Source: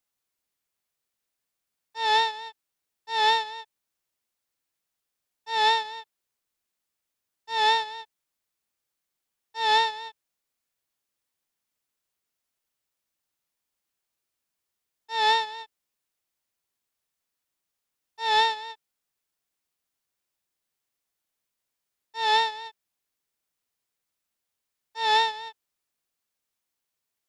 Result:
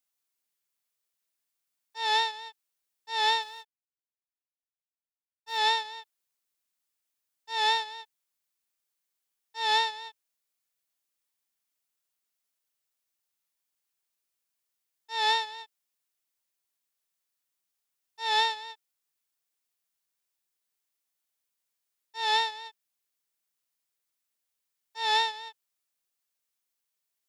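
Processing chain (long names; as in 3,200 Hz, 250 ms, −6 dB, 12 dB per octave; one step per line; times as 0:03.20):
0:03.42–0:05.58: mu-law and A-law mismatch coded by A
spectral tilt +1.5 dB per octave
level −4.5 dB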